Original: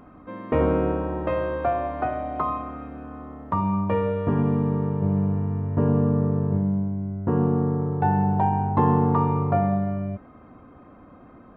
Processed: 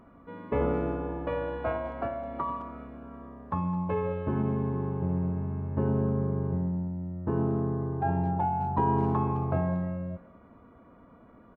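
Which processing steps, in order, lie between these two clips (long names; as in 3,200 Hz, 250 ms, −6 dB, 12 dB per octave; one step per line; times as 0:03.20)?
phase-vocoder pitch shift with formants kept −1.5 semitones
far-end echo of a speakerphone 210 ms, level −16 dB
level −6 dB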